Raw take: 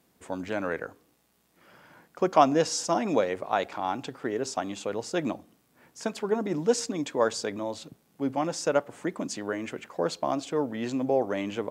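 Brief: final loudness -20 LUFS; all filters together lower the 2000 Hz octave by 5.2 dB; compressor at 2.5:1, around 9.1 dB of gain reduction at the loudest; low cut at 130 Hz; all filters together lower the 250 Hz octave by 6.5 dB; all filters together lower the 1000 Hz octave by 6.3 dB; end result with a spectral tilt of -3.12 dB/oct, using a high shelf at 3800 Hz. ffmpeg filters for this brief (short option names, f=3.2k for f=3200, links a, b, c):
-af "highpass=130,equalizer=f=250:t=o:g=-7.5,equalizer=f=1k:t=o:g=-8,equalizer=f=2k:t=o:g=-4.5,highshelf=f=3.8k:g=3.5,acompressor=threshold=-34dB:ratio=2.5,volume=17.5dB"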